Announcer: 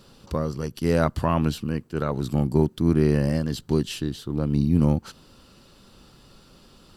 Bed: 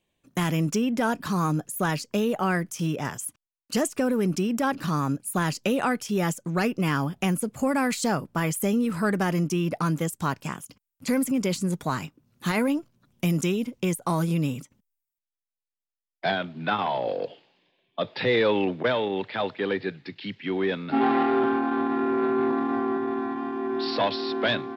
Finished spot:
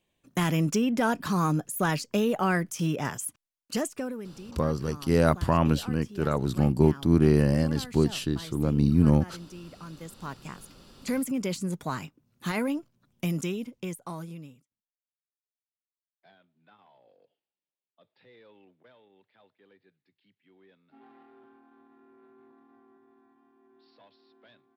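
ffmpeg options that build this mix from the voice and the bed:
-filter_complex "[0:a]adelay=4250,volume=0.944[s0];[1:a]volume=4.73,afade=t=out:st=3.43:d=0.86:silence=0.125893,afade=t=in:st=9.89:d=1.17:silence=0.199526,afade=t=out:st=13.24:d=1.42:silence=0.0334965[s1];[s0][s1]amix=inputs=2:normalize=0"

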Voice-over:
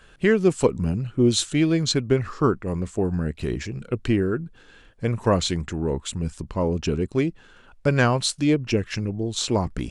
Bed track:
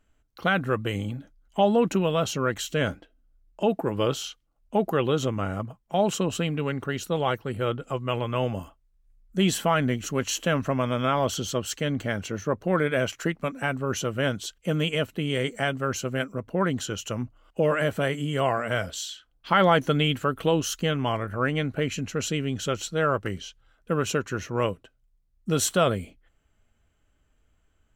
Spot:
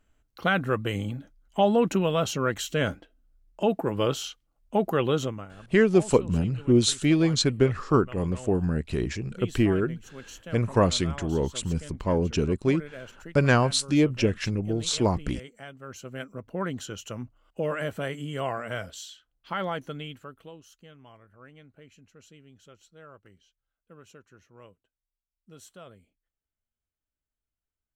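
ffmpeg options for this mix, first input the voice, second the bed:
-filter_complex "[0:a]adelay=5500,volume=0.891[s0];[1:a]volume=3.35,afade=t=out:st=5.16:d=0.31:silence=0.149624,afade=t=in:st=15.78:d=0.69:silence=0.281838,afade=t=out:st=18.67:d=1.91:silence=0.105925[s1];[s0][s1]amix=inputs=2:normalize=0"

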